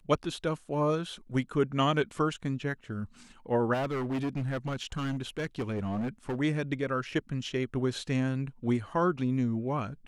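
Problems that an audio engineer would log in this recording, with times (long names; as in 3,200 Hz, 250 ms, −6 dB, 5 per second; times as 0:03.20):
0:03.73–0:06.40: clipping −28 dBFS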